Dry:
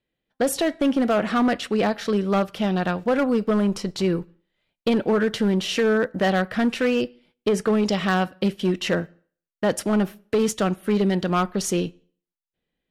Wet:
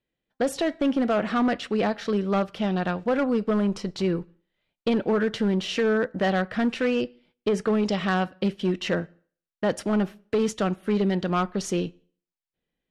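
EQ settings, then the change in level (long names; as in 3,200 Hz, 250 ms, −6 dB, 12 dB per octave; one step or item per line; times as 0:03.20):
high-frequency loss of the air 55 metres
−2.5 dB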